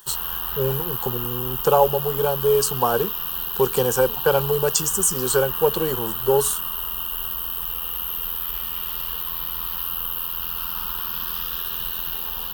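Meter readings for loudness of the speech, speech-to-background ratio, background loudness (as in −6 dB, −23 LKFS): −22.0 LKFS, 3.0 dB, −25.0 LKFS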